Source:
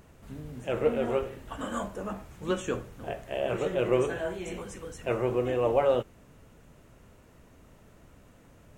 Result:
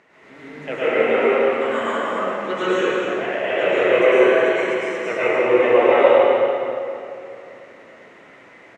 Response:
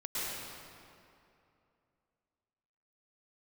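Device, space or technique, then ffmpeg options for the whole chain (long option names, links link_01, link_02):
station announcement: -filter_complex "[0:a]highpass=360,lowpass=4300,equalizer=frequency=2000:width_type=o:width=0.43:gain=12,aecho=1:1:215.7|285.7:0.355|0.282[link_01];[1:a]atrim=start_sample=2205[link_02];[link_01][link_02]afir=irnorm=-1:irlink=0,volume=7.5dB"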